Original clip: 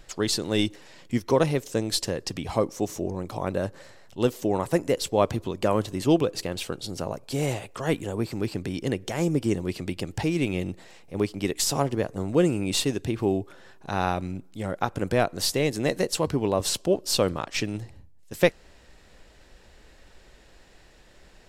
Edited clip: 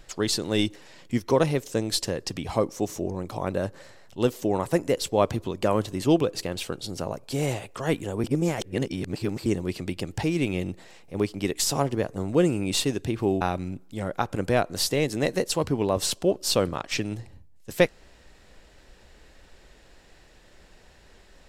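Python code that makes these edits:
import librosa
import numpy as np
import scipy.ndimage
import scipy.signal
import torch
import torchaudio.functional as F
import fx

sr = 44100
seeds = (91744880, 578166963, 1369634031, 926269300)

y = fx.edit(x, sr, fx.reverse_span(start_s=8.24, length_s=1.22),
    fx.cut(start_s=13.41, length_s=0.63), tone=tone)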